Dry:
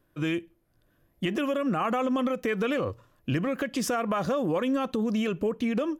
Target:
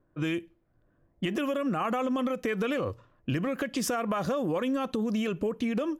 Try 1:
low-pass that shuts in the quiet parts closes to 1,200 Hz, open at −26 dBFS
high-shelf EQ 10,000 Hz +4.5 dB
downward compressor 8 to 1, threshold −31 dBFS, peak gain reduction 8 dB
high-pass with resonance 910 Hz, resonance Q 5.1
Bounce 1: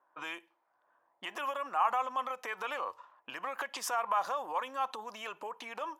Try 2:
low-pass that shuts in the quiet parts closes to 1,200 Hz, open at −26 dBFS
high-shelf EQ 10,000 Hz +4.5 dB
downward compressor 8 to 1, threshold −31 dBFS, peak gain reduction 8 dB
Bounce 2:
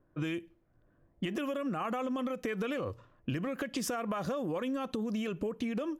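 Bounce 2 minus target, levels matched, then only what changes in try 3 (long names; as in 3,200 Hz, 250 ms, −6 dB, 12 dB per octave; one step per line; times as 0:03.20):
downward compressor: peak gain reduction +5.5 dB
change: downward compressor 8 to 1, threshold −24.5 dBFS, peak gain reduction 2.5 dB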